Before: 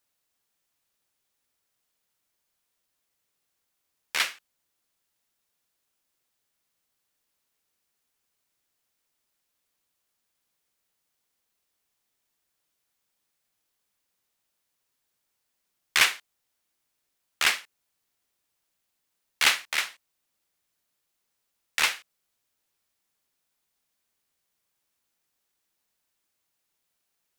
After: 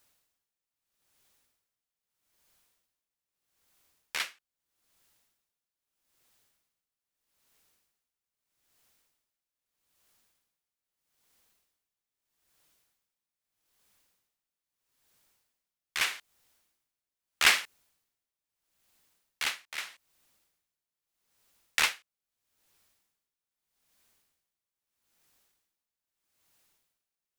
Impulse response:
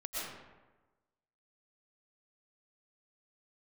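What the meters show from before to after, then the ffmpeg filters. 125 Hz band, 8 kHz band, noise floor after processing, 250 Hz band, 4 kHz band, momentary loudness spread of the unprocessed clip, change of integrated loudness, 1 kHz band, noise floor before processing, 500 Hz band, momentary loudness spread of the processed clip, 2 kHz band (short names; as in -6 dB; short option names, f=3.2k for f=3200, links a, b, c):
n/a, -4.0 dB, under -85 dBFS, -3.0 dB, -4.5 dB, 12 LU, -4.0 dB, -4.0 dB, -79 dBFS, -3.5 dB, 21 LU, -4.0 dB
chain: -af "lowshelf=f=100:g=5,aeval=exprs='val(0)*pow(10,-23*(0.5-0.5*cos(2*PI*0.79*n/s))/20)':c=same,volume=9dB"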